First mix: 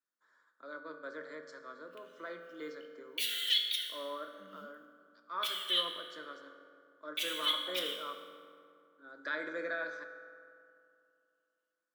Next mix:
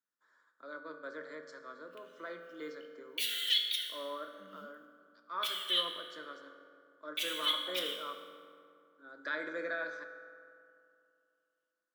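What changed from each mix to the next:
no change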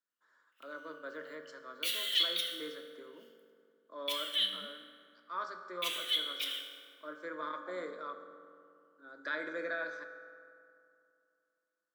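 background: entry -1.35 s

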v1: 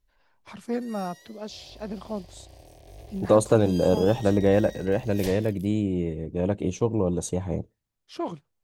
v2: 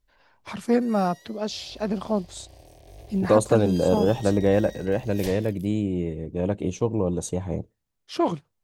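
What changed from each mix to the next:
first voice +8.0 dB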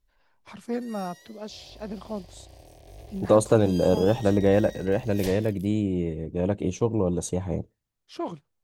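first voice -9.0 dB

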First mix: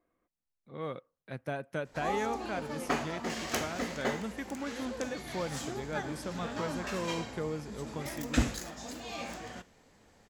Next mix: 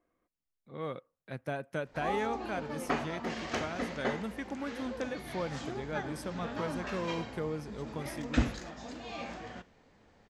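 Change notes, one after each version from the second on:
background: add distance through air 130 m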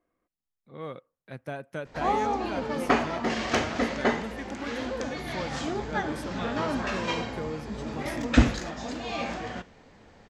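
background +9.0 dB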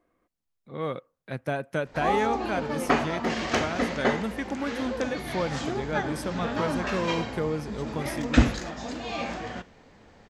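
speech +7.0 dB

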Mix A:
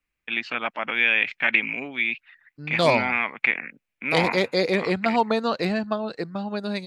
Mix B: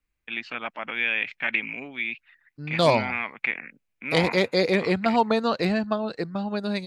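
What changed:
first voice -5.0 dB; master: add bass shelf 97 Hz +7 dB

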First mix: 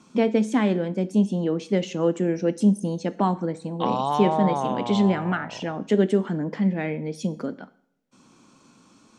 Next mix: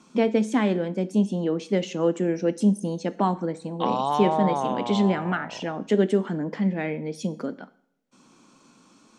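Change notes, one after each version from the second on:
master: add peaking EQ 81 Hz -14 dB 0.91 oct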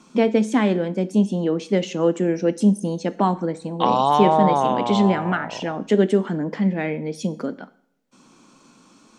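first voice +3.5 dB; second voice +7.0 dB

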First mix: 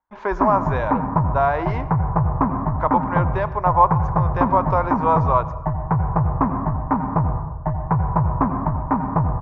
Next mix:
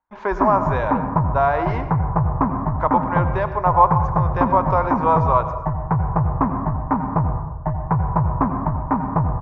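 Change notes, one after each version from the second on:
speech: send +7.0 dB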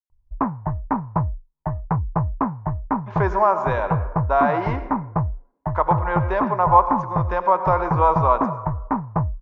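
speech: entry +2.95 s; background: send off

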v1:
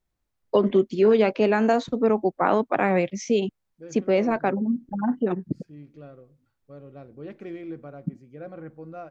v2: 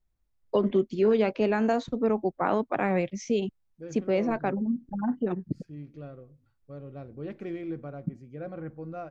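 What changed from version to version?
first voice -5.5 dB; master: add bass shelf 100 Hz +11.5 dB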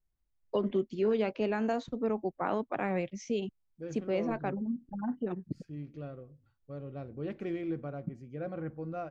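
first voice -6.0 dB; master: add peaking EQ 2.9 kHz +2.5 dB 0.24 oct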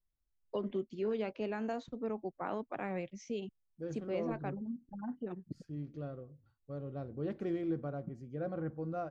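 first voice -6.5 dB; second voice: add peaking EQ 2.4 kHz -8.5 dB 0.64 oct

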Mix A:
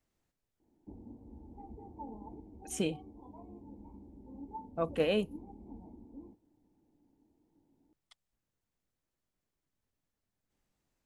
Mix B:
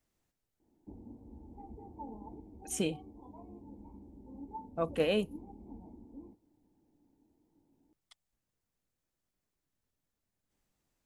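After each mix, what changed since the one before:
master: add treble shelf 6.6 kHz +5 dB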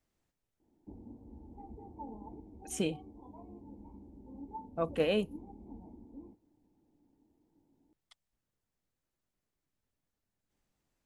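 master: add treble shelf 6.6 kHz -5 dB

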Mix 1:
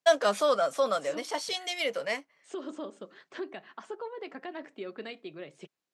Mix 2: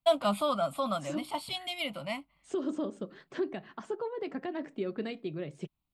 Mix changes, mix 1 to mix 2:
first voice: add static phaser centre 1.7 kHz, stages 6; master: remove frequency weighting A

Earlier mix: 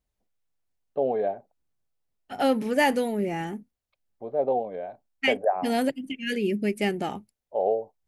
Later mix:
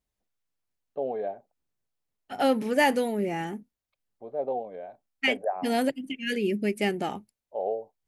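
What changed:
first voice -5.0 dB; master: add bass shelf 120 Hz -6 dB

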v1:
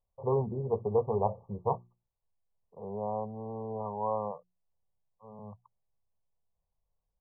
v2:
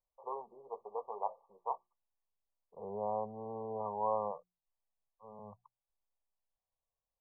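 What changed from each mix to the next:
first voice: add high-pass 950 Hz 12 dB/octave; master: add peaking EQ 110 Hz -10 dB 2.7 oct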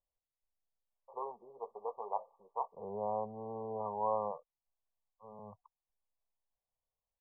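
first voice: entry +0.90 s; master: remove hum notches 60/120/180/240/300/360 Hz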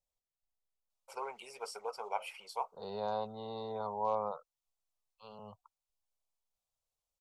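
master: remove brick-wall FIR low-pass 1.2 kHz

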